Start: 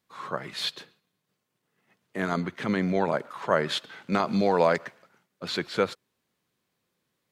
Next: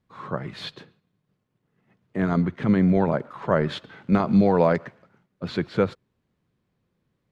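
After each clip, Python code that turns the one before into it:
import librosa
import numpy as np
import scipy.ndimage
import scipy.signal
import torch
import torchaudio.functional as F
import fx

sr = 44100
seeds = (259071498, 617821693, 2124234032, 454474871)

y = fx.riaa(x, sr, side='playback')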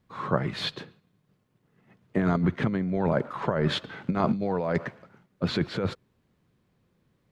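y = fx.over_compress(x, sr, threshold_db=-25.0, ratio=-1.0)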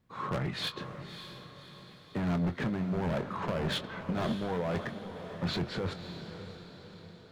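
y = np.clip(10.0 ** (25.5 / 20.0) * x, -1.0, 1.0) / 10.0 ** (25.5 / 20.0)
y = fx.doubler(y, sr, ms=23.0, db=-11.0)
y = fx.echo_diffused(y, sr, ms=579, feedback_pct=51, wet_db=-10.0)
y = F.gain(torch.from_numpy(y), -3.0).numpy()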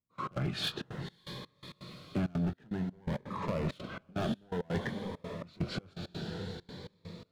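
y = fx.rider(x, sr, range_db=4, speed_s=0.5)
y = fx.step_gate(y, sr, bpm=166, pattern='..x.xxxxx.xx..xx', floor_db=-24.0, edge_ms=4.5)
y = fx.notch_cascade(y, sr, direction='rising', hz=0.55)
y = F.gain(torch.from_numpy(y), 1.0).numpy()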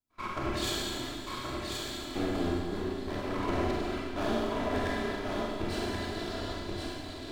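y = fx.lower_of_two(x, sr, delay_ms=3.0)
y = y + 10.0 ** (-4.5 / 20.0) * np.pad(y, (int(1078 * sr / 1000.0), 0))[:len(y)]
y = fx.rev_schroeder(y, sr, rt60_s=2.0, comb_ms=31, drr_db=-4.5)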